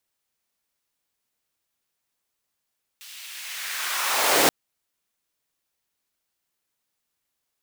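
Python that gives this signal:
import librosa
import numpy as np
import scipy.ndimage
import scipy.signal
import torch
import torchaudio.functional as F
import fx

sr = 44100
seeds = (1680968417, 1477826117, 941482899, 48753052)

y = fx.riser_noise(sr, seeds[0], length_s=1.48, colour='pink', kind='highpass', start_hz=3000.0, end_hz=270.0, q=1.4, swell_db=25.0, law='linear')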